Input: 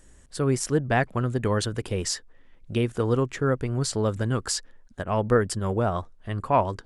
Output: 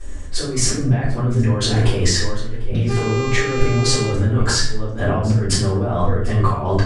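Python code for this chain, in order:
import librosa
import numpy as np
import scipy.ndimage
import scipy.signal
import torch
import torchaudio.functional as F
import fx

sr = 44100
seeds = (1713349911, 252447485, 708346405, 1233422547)

y = scipy.signal.sosfilt(scipy.signal.butter(2, 7400.0, 'lowpass', fs=sr, output='sos'), x)
y = y + 10.0 ** (-21.5 / 20.0) * np.pad(y, (int(746 * sr / 1000.0), 0))[:len(y)]
y = fx.over_compress(y, sr, threshold_db=-32.0, ratio=-1.0)
y = fx.dmg_buzz(y, sr, base_hz=400.0, harmonics=19, level_db=-37.0, tilt_db=-5, odd_only=False, at=(2.88, 4.08), fade=0.02)
y = fx.room_shoebox(y, sr, seeds[0], volume_m3=79.0, walls='mixed', distance_m=3.6)
y = y * librosa.db_to_amplitude(-2.5)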